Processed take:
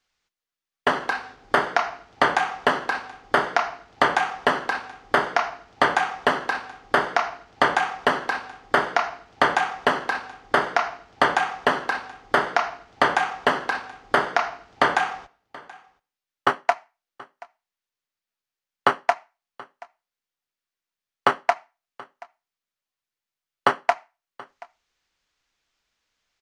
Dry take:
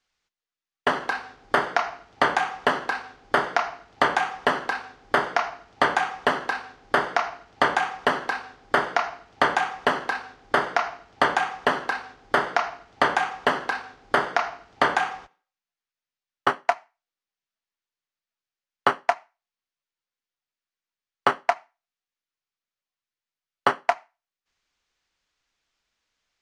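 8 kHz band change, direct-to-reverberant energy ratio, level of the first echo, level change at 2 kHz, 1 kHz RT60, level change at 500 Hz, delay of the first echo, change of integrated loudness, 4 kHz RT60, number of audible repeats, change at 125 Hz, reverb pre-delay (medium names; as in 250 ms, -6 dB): +1.5 dB, no reverb, -22.0 dB, +1.5 dB, no reverb, +1.5 dB, 729 ms, +1.5 dB, no reverb, 1, +1.5 dB, no reverb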